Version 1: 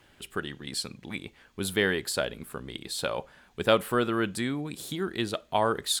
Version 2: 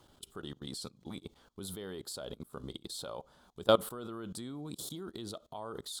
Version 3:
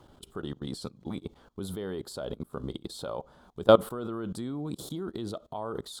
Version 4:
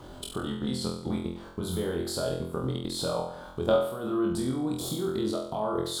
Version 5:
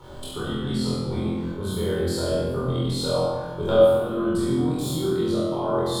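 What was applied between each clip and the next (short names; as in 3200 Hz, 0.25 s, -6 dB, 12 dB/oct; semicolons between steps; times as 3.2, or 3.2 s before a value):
band shelf 2100 Hz -13.5 dB 1 oct; level quantiser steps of 21 dB
high shelf 2200 Hz -11 dB; gain +8 dB
compressor 3:1, threshold -40 dBFS, peak gain reduction 20 dB; on a send: flutter echo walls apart 4 m, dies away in 0.61 s; on the sum: gain +8.5 dB
shoebox room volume 980 m³, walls mixed, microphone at 4.4 m; gain -4.5 dB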